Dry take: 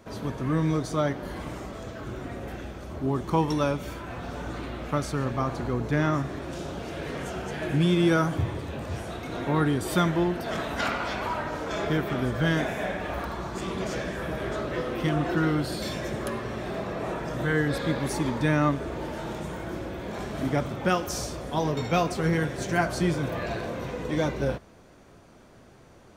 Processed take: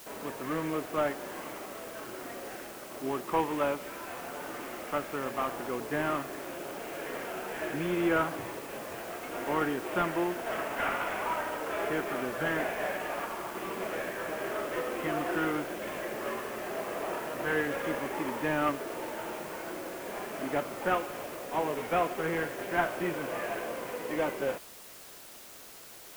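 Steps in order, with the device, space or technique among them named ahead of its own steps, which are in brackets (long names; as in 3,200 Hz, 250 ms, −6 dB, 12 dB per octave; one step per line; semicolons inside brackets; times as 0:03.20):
army field radio (band-pass filter 370–3,200 Hz; variable-slope delta modulation 16 kbit/s; white noise bed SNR 16 dB)
level −1 dB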